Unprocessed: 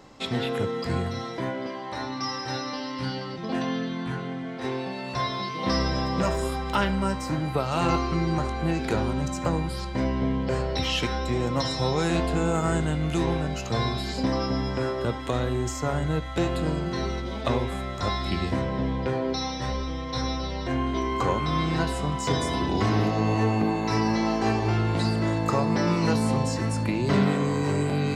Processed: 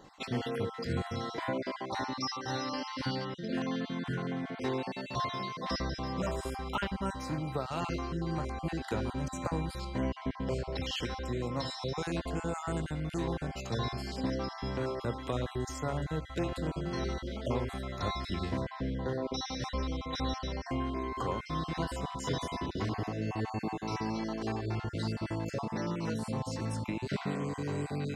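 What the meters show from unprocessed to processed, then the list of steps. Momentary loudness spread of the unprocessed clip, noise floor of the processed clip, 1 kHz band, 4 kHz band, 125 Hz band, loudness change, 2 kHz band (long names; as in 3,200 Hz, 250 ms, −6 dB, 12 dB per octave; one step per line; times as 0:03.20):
7 LU, −46 dBFS, −8.5 dB, −8.0 dB, −9.0 dB, −8.5 dB, −8.5 dB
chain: time-frequency cells dropped at random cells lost 25%
speech leveller 0.5 s
level −7.5 dB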